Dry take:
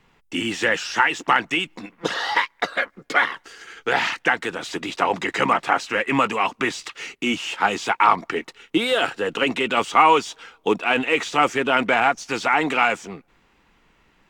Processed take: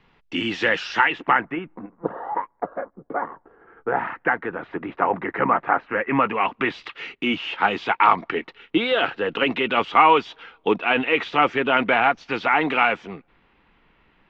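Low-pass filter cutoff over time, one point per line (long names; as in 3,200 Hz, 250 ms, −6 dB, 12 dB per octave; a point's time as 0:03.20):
low-pass filter 24 dB per octave
0:00.93 4,600 Hz
0:01.47 1,800 Hz
0:02.13 1,000 Hz
0:03.49 1,000 Hz
0:04.32 1,800 Hz
0:05.89 1,800 Hz
0:06.83 3,600 Hz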